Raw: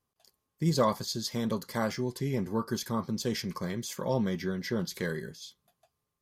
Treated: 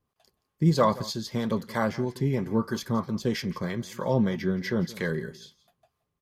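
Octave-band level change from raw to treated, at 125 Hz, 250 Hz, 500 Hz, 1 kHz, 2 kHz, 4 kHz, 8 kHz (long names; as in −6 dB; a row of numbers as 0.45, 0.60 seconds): +5.5, +4.5, +3.5, +4.0, +4.0, −0.5, −3.5 decibels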